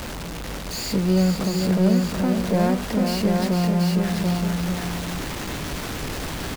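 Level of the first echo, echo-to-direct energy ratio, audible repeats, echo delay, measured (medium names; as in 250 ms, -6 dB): -6.0 dB, -1.0 dB, 3, 455 ms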